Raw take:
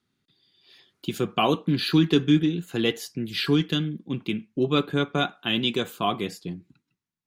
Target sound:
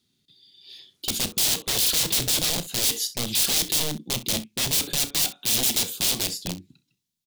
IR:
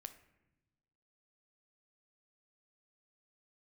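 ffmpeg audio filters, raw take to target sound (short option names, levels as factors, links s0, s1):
-filter_complex "[0:a]aeval=exprs='(mod(17.8*val(0)+1,2)-1)/17.8':c=same,firequalizer=gain_entry='entry(230,0);entry(1300,-10);entry(3500,8)':delay=0.05:min_phase=1,asplit=2[s0][s1];[s1]aecho=0:1:32|64:0.2|0.141[s2];[s0][s2]amix=inputs=2:normalize=0,volume=1.33"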